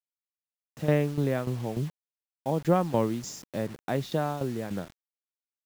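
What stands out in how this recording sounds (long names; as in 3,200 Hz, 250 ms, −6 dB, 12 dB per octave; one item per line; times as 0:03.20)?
tremolo saw down 3.4 Hz, depth 75%
a quantiser's noise floor 8 bits, dither none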